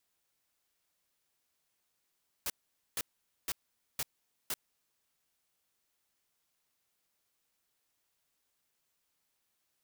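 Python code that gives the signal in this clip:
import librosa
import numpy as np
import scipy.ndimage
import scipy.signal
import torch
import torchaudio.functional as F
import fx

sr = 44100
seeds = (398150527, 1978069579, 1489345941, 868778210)

y = fx.noise_burst(sr, seeds[0], colour='white', on_s=0.04, off_s=0.47, bursts=5, level_db=-34.5)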